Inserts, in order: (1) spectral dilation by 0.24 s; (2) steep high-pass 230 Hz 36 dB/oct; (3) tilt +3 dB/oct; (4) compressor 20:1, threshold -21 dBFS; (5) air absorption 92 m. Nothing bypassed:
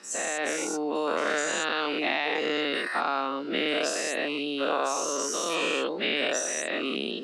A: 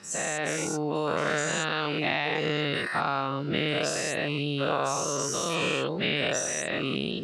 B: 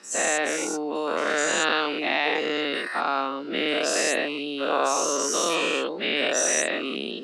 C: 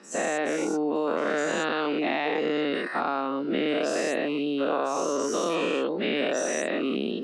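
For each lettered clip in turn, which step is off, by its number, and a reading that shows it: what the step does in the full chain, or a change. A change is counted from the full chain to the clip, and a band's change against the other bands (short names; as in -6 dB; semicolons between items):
2, 125 Hz band +19.0 dB; 4, mean gain reduction 2.5 dB; 3, 125 Hz band +8.5 dB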